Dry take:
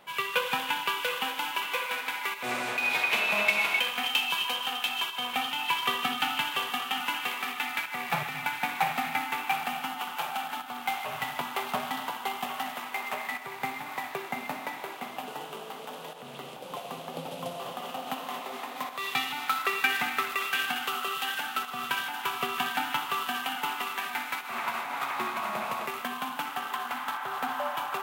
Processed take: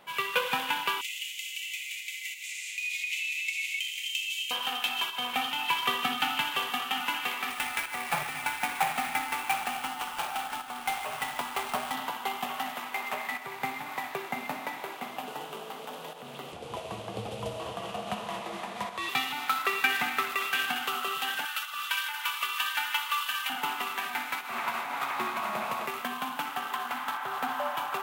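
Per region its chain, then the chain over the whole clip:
1.01–4.51 s: peaking EQ 7.1 kHz +9.5 dB 0.47 oct + compression 2:1, threshold -29 dBFS + rippled Chebyshev high-pass 2 kHz, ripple 3 dB
7.50–11.95 s: bass shelf 180 Hz -9.5 dB + sample-rate reducer 12 kHz, jitter 20%
16.52–19.09 s: low-pass 11 kHz 24 dB/octave + bass shelf 180 Hz +6 dB + frequency shift -52 Hz
21.45–23.50 s: high-pass 1.3 kHz + comb 3.4 ms, depth 89%
whole clip: none

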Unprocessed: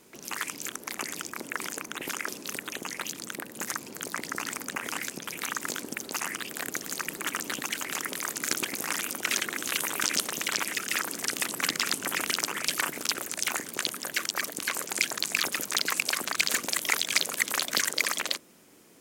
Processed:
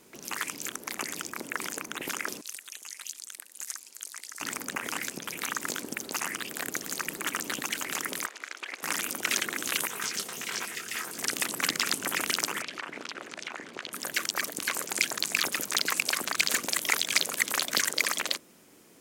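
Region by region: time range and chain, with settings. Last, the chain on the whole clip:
2.41–4.41 s: low-pass 9.7 kHz + differentiator
8.26–8.83 s: tilt EQ +4 dB/octave + compression 12:1, threshold -21 dBFS + band-pass 390–2200 Hz
9.87–11.18 s: comb of notches 290 Hz + detune thickener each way 51 cents
12.62–13.93 s: low-pass 3.3 kHz + peaking EQ 82 Hz -7.5 dB 2.3 oct + compression 4:1, threshold -33 dBFS
whole clip: none

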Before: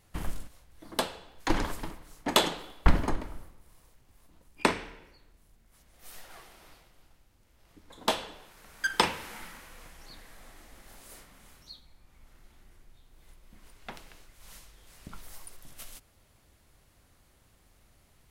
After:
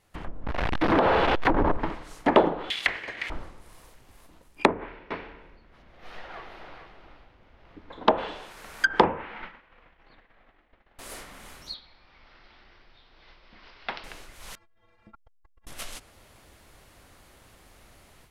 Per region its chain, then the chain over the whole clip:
0.44–1.77 s: jump at every zero crossing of -25 dBFS + peaking EQ 7.4 kHz -8.5 dB 0.67 oct + compression 10:1, threshold -25 dBFS
2.70–3.30 s: steep high-pass 1.9 kHz 48 dB/octave + treble shelf 5.6 kHz +11 dB + waveshaping leveller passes 5
4.67–8.18 s: distance through air 290 m + multi-tap echo 144/434 ms -16.5/-8 dB
9.04–10.99 s: expander -39 dBFS + low-pass 3.1 kHz 24 dB/octave
11.74–14.04 s: steep low-pass 5.3 kHz 72 dB/octave + bass shelf 500 Hz -9.5 dB
14.55–15.67 s: low-pass 1.8 kHz + inharmonic resonator 100 Hz, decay 0.48 s, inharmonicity 0.03 + transformer saturation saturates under 140 Hz
whole clip: low-pass that closes with the level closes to 770 Hz, closed at -25.5 dBFS; tone controls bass -6 dB, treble -4 dB; level rider gain up to 12 dB

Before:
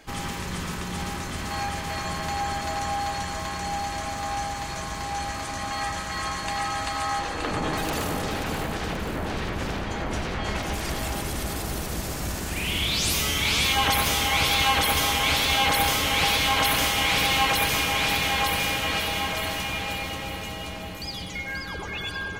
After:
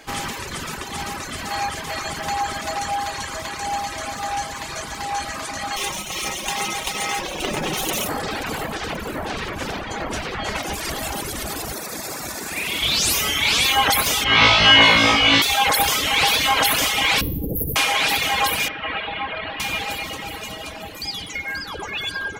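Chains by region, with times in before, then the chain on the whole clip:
5.76–8.08 s: comb filter that takes the minimum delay 0.32 ms + treble shelf 5.8 kHz +5 dB + comb 5.4 ms, depth 56%
11.72–12.83 s: high-pass 200 Hz 6 dB/octave + band-stop 3 kHz, Q 5.5
14.24–15.42 s: distance through air 150 m + flutter echo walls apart 3.1 m, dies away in 1.4 s
17.21–17.76 s: inverse Chebyshev band-stop 1.4–5 kHz, stop band 70 dB + bass shelf 120 Hz +11.5 dB + level flattener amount 100%
18.68–19.60 s: Bessel low-pass 2 kHz, order 8 + tilt shelf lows -3.5 dB, about 1.4 kHz
whole clip: de-hum 179.6 Hz, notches 33; reverb removal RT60 1.5 s; bass shelf 190 Hz -9.5 dB; trim +7.5 dB

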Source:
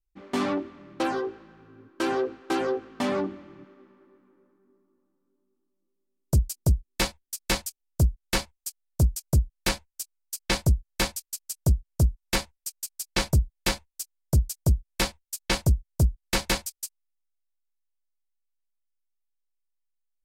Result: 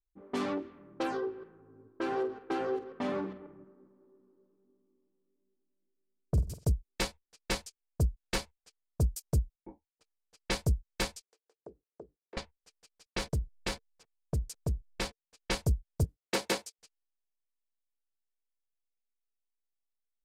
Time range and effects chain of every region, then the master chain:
1.17–6.65 s: chunks repeated in reverse 135 ms, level -14 dB + treble shelf 4.3 kHz -11.5 dB + flutter echo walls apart 8.1 m, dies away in 0.27 s
9.55–10.01 s: cascade formant filter u + bass shelf 380 Hz -7 dB
11.21–12.37 s: resonant high-pass 390 Hz, resonance Q 3.4 + compression 10:1, threshold -36 dBFS
13.06–15.35 s: compression 5:1, threshold -20 dBFS + hysteresis with a dead band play -42.5 dBFS
16.04–16.79 s: high-pass 350 Hz + bass shelf 450 Hz +11.5 dB
whole clip: peaking EQ 450 Hz +8.5 dB 0.21 oct; level-controlled noise filter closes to 760 Hz, open at -22.5 dBFS; trim -7 dB

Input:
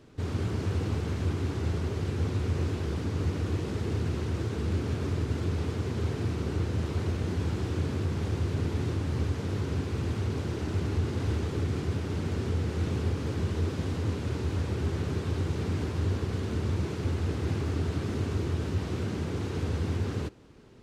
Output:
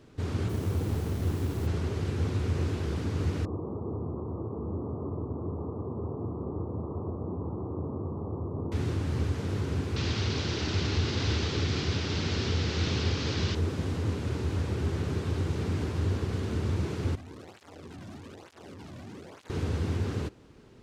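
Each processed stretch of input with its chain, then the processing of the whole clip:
0.48–1.66 s: median filter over 25 samples + added noise pink -47 dBFS
3.45–8.72 s: steep low-pass 1.2 kHz 96 dB/octave + bass shelf 120 Hz -11 dB
9.96–13.55 s: low-pass 6.1 kHz 24 dB/octave + peaking EQ 4.6 kHz +14.5 dB 2.4 oct
17.15–19.50 s: valve stage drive 39 dB, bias 0.65 + cancelling through-zero flanger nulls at 1.1 Hz, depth 2.5 ms
whole clip: none

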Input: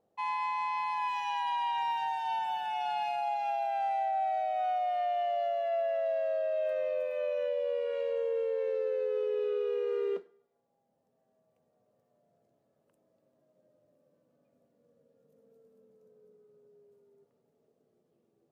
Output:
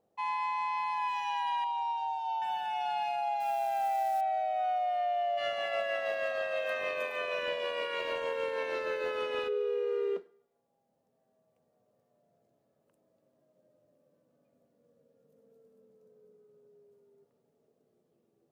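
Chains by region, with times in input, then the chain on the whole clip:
1.64–2.42 s: high-pass 390 Hz 24 dB/octave + distance through air 88 m + static phaser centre 730 Hz, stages 4
3.40–4.21 s: bass shelf 240 Hz +6 dB + hum notches 50/100/150/200/250 Hz + companded quantiser 6-bit
5.37–9.47 s: spectral peaks clipped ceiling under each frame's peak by 22 dB + tremolo 6.4 Hz, depth 33%
whole clip: none

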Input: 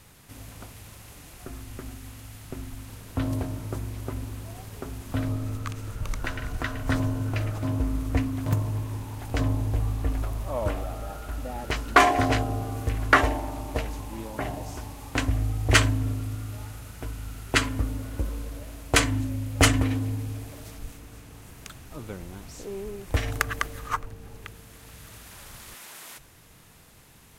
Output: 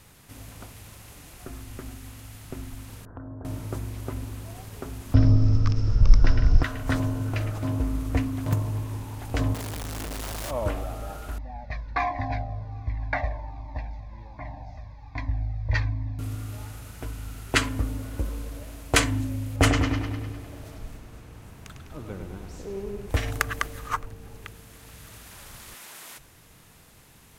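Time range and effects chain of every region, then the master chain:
3.05–3.45 s: elliptic low-pass 1.6 kHz + compression 4:1, threshold -38 dBFS
5.14–6.63 s: resonant low-pass 5.3 kHz, resonance Q 15 + tilt EQ -3.5 dB/octave
9.54–10.51 s: tone controls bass -8 dB, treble +12 dB + Schmitt trigger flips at -43 dBFS
11.38–16.19 s: distance through air 240 m + static phaser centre 2 kHz, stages 8 + Shepard-style flanger falling 1.3 Hz
19.56–23.10 s: treble shelf 2.3 kHz -7 dB + bucket-brigade echo 101 ms, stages 4096, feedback 61%, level -6 dB
whole clip: none

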